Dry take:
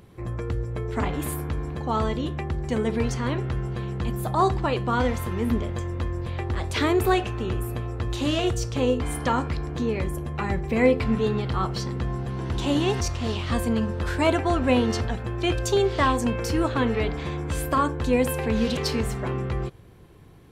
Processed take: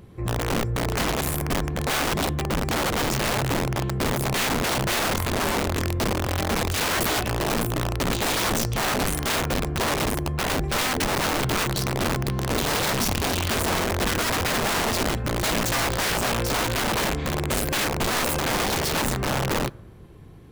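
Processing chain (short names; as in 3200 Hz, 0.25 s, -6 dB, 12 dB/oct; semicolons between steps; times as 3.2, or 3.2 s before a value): low shelf 440 Hz +5 dB; limiter -12.5 dBFS, peak gain reduction 7.5 dB; wrapped overs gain 19 dB; on a send: reverb RT60 1.1 s, pre-delay 5 ms, DRR 22.5 dB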